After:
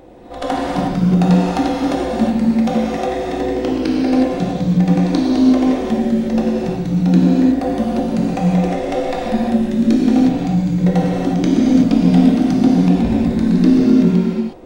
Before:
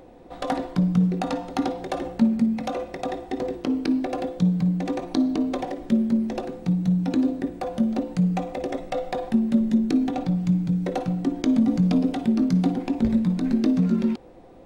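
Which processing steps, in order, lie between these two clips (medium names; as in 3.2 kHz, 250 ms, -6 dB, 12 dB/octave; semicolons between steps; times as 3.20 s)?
on a send: reverse echo 82 ms -12.5 dB; on the sum: gated-style reverb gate 390 ms flat, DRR -4.5 dB; trim +3.5 dB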